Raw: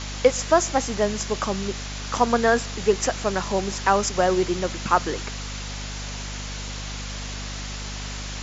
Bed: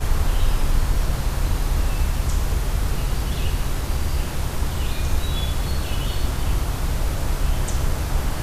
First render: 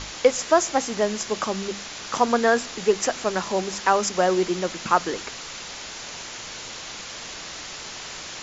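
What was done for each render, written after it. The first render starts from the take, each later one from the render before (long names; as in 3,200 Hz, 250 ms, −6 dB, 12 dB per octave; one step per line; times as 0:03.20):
mains-hum notches 50/100/150/200/250 Hz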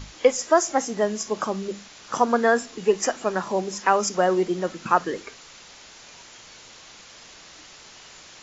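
noise reduction from a noise print 10 dB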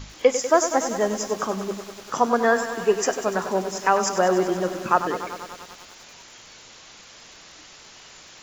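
feedback echo at a low word length 97 ms, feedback 80%, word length 7 bits, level −10.5 dB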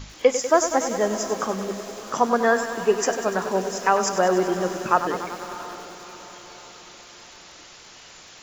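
feedback delay with all-pass diffusion 658 ms, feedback 45%, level −14.5 dB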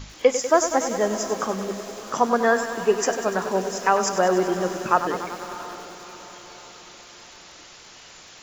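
no processing that can be heard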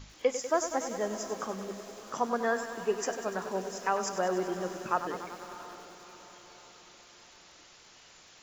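level −10 dB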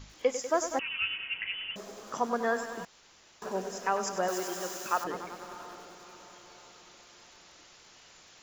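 0:00.79–0:01.76: voice inversion scrambler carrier 3,200 Hz
0:02.85–0:03.42: fill with room tone
0:04.28–0:05.04: RIAA equalisation recording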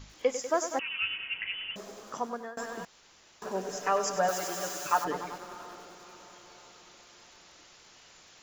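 0:00.54–0:01.03: high-pass filter 170 Hz 6 dB per octave
0:01.79–0:02.57: fade out equal-power, to −24 dB
0:03.68–0:05.38: comb filter 6.8 ms, depth 86%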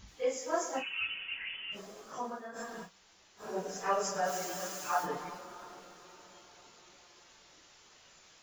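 random phases in long frames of 100 ms
tuned comb filter 190 Hz, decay 0.53 s, harmonics all, mix 40%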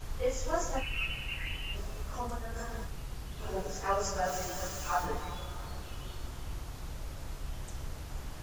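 mix in bed −18.5 dB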